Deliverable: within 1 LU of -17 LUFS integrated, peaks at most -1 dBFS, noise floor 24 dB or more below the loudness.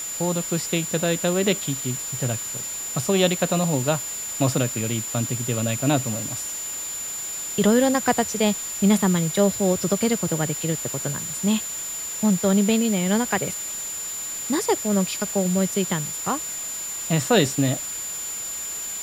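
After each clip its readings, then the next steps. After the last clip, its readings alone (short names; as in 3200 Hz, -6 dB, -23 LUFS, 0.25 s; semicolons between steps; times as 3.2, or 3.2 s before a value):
steady tone 7100 Hz; tone level -29 dBFS; noise floor -31 dBFS; noise floor target -47 dBFS; loudness -23.0 LUFS; peak -3.5 dBFS; loudness target -17.0 LUFS
-> notch 7100 Hz, Q 30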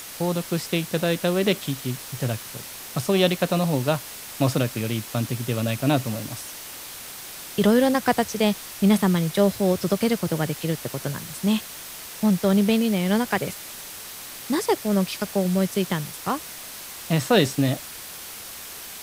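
steady tone none; noise floor -38 dBFS; noise floor target -48 dBFS
-> denoiser 10 dB, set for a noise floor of -38 dBFS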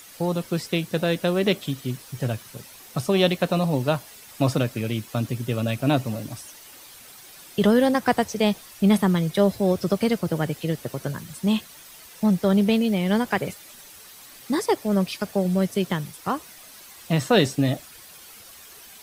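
noise floor -46 dBFS; noise floor target -48 dBFS
-> denoiser 6 dB, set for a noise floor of -46 dBFS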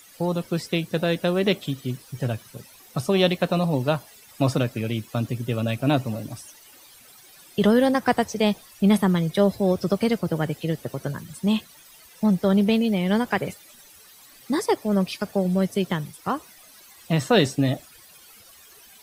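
noise floor -50 dBFS; loudness -24.0 LUFS; peak -4.0 dBFS; loudness target -17.0 LUFS
-> gain +7 dB; limiter -1 dBFS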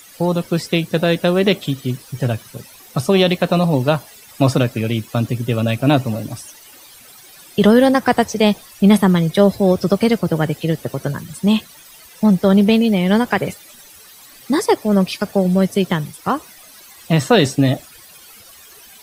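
loudness -17.0 LUFS; peak -1.0 dBFS; noise floor -43 dBFS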